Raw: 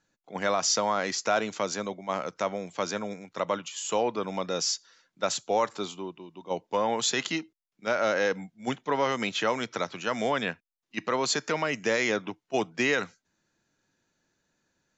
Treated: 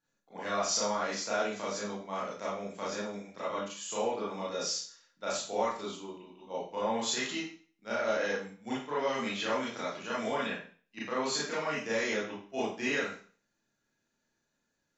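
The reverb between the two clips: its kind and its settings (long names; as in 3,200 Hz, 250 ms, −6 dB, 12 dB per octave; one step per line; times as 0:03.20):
four-comb reverb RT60 0.43 s, combs from 27 ms, DRR −8.5 dB
level −14 dB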